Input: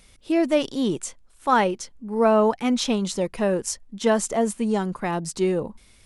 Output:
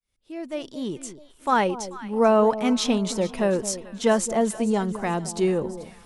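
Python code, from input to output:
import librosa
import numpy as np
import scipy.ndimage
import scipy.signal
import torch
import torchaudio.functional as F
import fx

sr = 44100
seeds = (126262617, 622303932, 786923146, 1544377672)

y = fx.fade_in_head(x, sr, length_s=1.89)
y = fx.echo_alternate(y, sr, ms=219, hz=920.0, feedback_pct=63, wet_db=-12.5)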